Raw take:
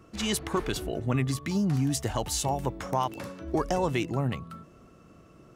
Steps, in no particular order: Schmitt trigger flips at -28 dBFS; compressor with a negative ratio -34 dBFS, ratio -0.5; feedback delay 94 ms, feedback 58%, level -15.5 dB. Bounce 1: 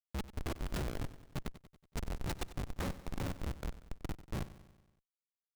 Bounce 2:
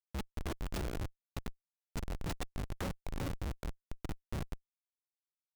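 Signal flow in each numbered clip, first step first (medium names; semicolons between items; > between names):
compressor with a negative ratio > Schmitt trigger > feedback delay; compressor with a negative ratio > feedback delay > Schmitt trigger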